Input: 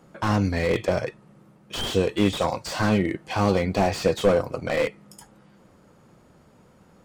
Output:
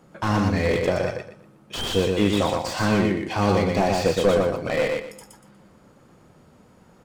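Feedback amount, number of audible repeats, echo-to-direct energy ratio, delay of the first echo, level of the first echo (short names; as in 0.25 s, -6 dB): 27%, 3, -2.5 dB, 0.12 s, -3.0 dB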